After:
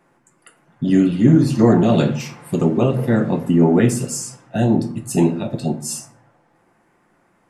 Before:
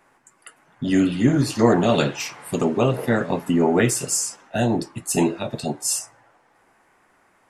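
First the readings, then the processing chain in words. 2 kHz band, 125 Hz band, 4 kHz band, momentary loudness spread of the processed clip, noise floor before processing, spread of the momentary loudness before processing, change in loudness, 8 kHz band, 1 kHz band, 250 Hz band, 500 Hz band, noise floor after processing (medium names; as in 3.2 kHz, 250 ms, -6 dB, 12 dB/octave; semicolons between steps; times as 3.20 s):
-3.0 dB, +7.0 dB, -3.5 dB, 12 LU, -61 dBFS, 9 LU, +4.0 dB, -4.0 dB, -1.0 dB, +5.5 dB, +2.0 dB, -61 dBFS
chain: peaking EQ 180 Hz +10.5 dB 2.9 oct; simulated room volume 540 m³, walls furnished, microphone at 0.84 m; trim -4.5 dB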